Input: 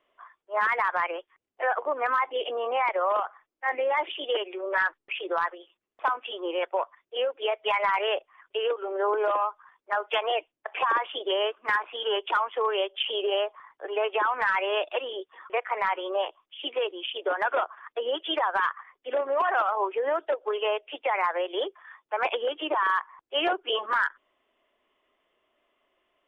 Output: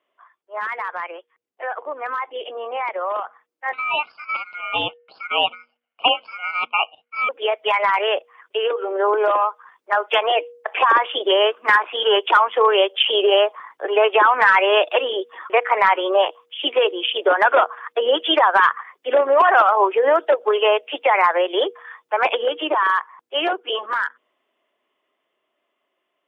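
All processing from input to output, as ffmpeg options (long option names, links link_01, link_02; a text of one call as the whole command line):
ffmpeg -i in.wav -filter_complex "[0:a]asettb=1/sr,asplit=3[link_01][link_02][link_03];[link_01]atrim=end=3.734[link_04];[link_02]atrim=start=3.73:end=7.29,asetpts=PTS-STARTPTS,afade=type=in:duration=0.004:curve=qsin,afade=type=out:start_time=3.556:duration=0.004:curve=qsin,highshelf=frequency=1700:width_type=q:width=3:gain=-13.5,aeval=exprs='val(0)*sin(2*PI*1800*n/s)':channel_layout=same[link_05];[link_03]atrim=start=7.286[link_06];[link_04][link_05]acrossfade=duration=0.004:curve1=hsin:curve2=qsin[link_07];[link_07][link_06]acrossfade=duration=0.004:curve1=qsin:curve2=hsin,highpass=160,bandreject=frequency=239.6:width_type=h:width=4,bandreject=frequency=479.2:width_type=h:width=4,dynaudnorm=framelen=390:gausssize=21:maxgain=16.5dB,volume=-2dB" out.wav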